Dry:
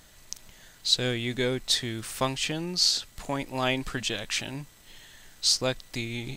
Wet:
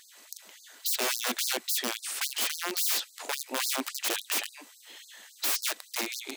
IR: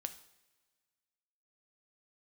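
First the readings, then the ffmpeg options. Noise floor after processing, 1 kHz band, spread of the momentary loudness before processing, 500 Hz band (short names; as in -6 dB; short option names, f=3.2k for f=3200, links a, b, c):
-56 dBFS, -2.0 dB, 14 LU, -8.0 dB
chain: -af "aeval=exprs='(mod(17.8*val(0)+1,2)-1)/17.8':c=same,afftfilt=real='re*gte(b*sr/1024,210*pow(4100/210,0.5+0.5*sin(2*PI*3.6*pts/sr)))':imag='im*gte(b*sr/1024,210*pow(4100/210,0.5+0.5*sin(2*PI*3.6*pts/sr)))':win_size=1024:overlap=0.75,volume=3dB"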